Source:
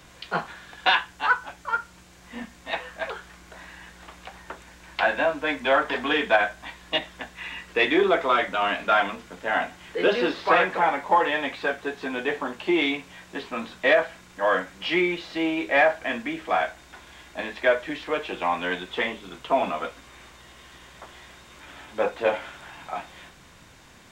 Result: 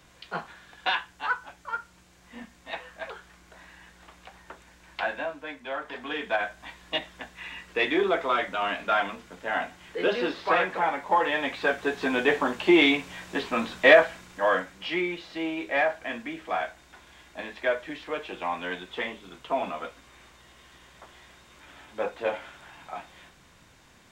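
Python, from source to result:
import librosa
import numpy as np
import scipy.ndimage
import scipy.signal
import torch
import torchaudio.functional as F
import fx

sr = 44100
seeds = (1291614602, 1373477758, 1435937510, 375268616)

y = fx.gain(x, sr, db=fx.line((5.0, -6.5), (5.64, -14.0), (6.7, -4.0), (11.04, -4.0), (12.04, 4.0), (13.95, 4.0), (14.93, -5.5)))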